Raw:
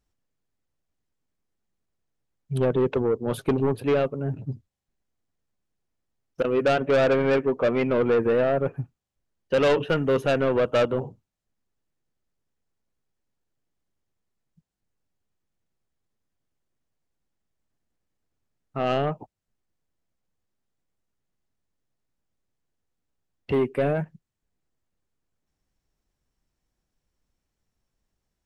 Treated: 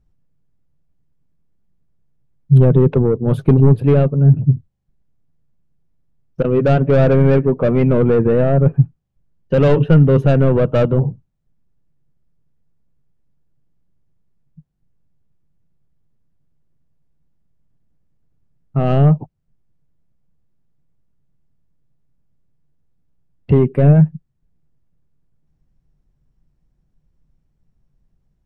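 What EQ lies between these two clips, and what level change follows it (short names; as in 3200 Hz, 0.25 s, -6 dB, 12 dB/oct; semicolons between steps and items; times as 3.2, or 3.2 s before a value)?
tilt -3 dB/oct; bell 150 Hz +10.5 dB 0.62 oct; +2.5 dB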